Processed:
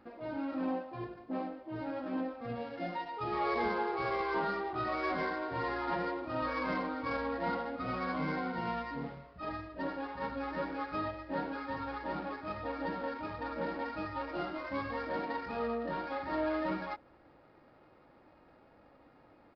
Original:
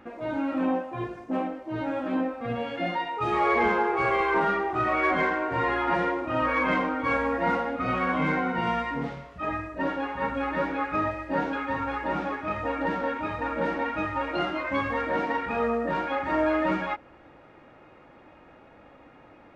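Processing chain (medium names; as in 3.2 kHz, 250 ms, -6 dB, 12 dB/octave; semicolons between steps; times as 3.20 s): median filter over 15 samples; resampled via 11.025 kHz; trim -8.5 dB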